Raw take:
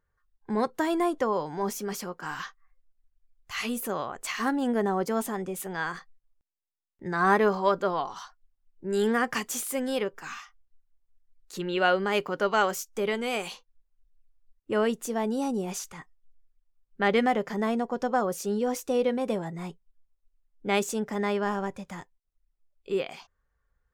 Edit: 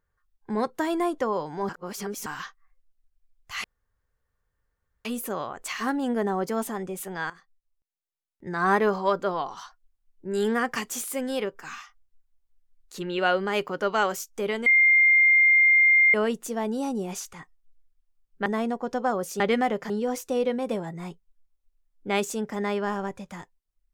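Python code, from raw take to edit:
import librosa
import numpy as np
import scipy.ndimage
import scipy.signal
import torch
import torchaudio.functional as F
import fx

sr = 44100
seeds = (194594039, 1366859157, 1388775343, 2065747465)

y = fx.edit(x, sr, fx.reverse_span(start_s=1.69, length_s=0.57),
    fx.insert_room_tone(at_s=3.64, length_s=1.41),
    fx.fade_in_from(start_s=5.89, length_s=1.36, floor_db=-15.0),
    fx.bleep(start_s=13.25, length_s=1.48, hz=2110.0, db=-14.5),
    fx.move(start_s=17.05, length_s=0.5, to_s=18.49), tone=tone)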